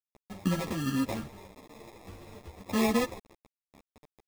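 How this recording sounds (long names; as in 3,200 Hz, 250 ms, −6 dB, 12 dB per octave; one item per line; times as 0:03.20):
aliases and images of a low sample rate 1,500 Hz, jitter 0%
tremolo saw up 4.2 Hz, depth 30%
a quantiser's noise floor 8 bits, dither none
a shimmering, thickened sound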